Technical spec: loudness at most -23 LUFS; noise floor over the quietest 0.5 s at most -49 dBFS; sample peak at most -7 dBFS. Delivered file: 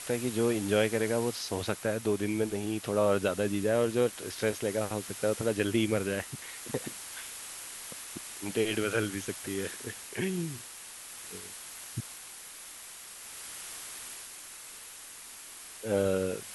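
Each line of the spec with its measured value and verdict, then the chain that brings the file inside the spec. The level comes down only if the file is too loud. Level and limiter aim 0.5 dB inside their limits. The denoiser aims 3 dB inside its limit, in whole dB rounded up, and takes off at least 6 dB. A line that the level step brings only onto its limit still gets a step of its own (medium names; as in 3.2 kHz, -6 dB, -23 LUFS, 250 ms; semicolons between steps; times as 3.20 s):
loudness -32.0 LUFS: pass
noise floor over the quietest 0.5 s -47 dBFS: fail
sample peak -12.0 dBFS: pass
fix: noise reduction 6 dB, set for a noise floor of -47 dBFS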